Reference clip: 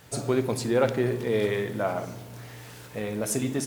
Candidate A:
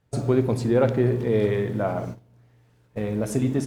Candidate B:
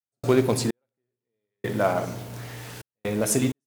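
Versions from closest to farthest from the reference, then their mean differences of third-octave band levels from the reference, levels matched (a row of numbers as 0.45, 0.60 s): A, B; 9.0, 14.0 dB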